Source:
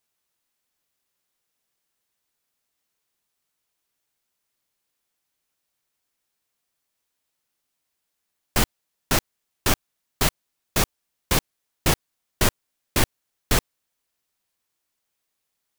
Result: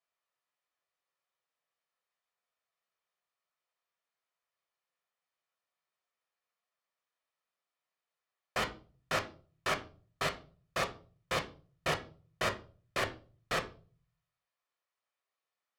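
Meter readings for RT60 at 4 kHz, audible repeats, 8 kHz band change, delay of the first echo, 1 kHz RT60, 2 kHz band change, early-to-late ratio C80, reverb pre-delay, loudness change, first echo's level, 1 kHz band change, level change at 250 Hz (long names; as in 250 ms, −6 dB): 0.30 s, no echo audible, −19.0 dB, no echo audible, 0.35 s, −7.0 dB, 19.5 dB, 6 ms, −11.5 dB, no echo audible, −6.5 dB, −15.5 dB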